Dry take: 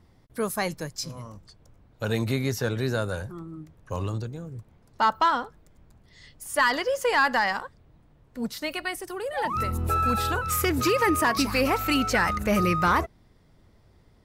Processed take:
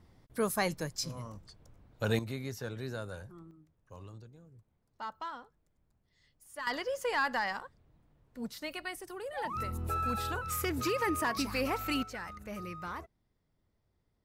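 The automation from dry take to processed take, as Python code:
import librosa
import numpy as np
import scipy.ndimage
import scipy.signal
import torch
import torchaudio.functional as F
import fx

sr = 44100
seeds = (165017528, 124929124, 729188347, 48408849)

y = fx.gain(x, sr, db=fx.steps((0.0, -3.0), (2.19, -12.5), (3.51, -19.0), (6.67, -9.0), (12.03, -19.0)))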